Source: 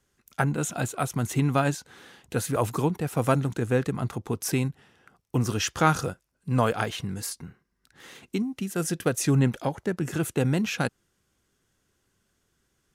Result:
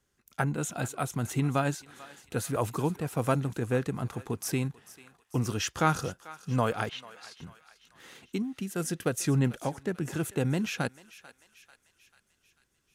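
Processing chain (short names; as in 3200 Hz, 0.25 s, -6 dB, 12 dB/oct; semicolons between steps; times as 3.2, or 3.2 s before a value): 6.89–7.39 Chebyshev band-pass 860–3700 Hz, order 2; thinning echo 0.442 s, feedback 58%, high-pass 1000 Hz, level -16 dB; gain -4 dB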